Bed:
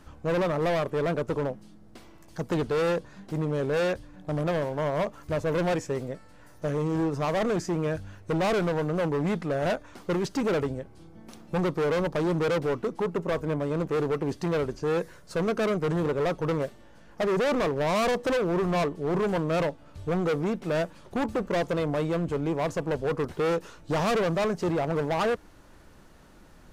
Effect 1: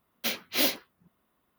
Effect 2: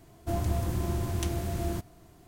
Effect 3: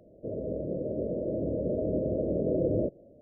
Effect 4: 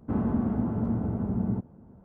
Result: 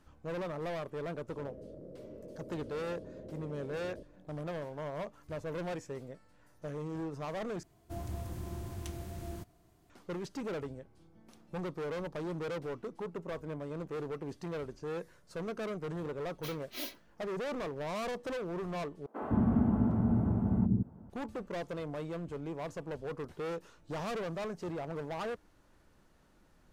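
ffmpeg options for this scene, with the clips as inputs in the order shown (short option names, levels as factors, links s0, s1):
-filter_complex "[0:a]volume=0.251[s0];[3:a]acompressor=threshold=0.02:ratio=6:attack=3.2:release=140:knee=1:detection=peak[s1];[1:a]aecho=1:1:3.1:0.48[s2];[4:a]acrossover=split=390[s3][s4];[s3]adelay=160[s5];[s5][s4]amix=inputs=2:normalize=0[s6];[s0]asplit=3[s7][s8][s9];[s7]atrim=end=7.634[s10];[2:a]atrim=end=2.27,asetpts=PTS-STARTPTS,volume=0.282[s11];[s8]atrim=start=9.896:end=19.064[s12];[s6]atrim=end=2.04[s13];[s9]atrim=start=21.096[s14];[s1]atrim=end=3.21,asetpts=PTS-STARTPTS,volume=0.299,afade=t=in:d=0.004:c=hsin,afade=t=out:st=3.206:d=0.004:c=hsin,adelay=1140[s15];[s2]atrim=end=1.58,asetpts=PTS-STARTPTS,volume=0.15,afade=t=in:d=0.004:c=hsin,afade=t=out:st=1.576:d=0.004:c=hsin,adelay=16190[s16];[s10][s11]acrossfade=d=0.004:c1=hsin:c2=hsin[s17];[s17][s12]acrossfade=d=0.004:c1=hsin:c2=hsin[s18];[s18][s13]acrossfade=d=0.004:c1=hsin:c2=hsin[s19];[s19][s14]acrossfade=d=0.004:c1=hsin:c2=hsin[s20];[s20][s15][s16]amix=inputs=3:normalize=0"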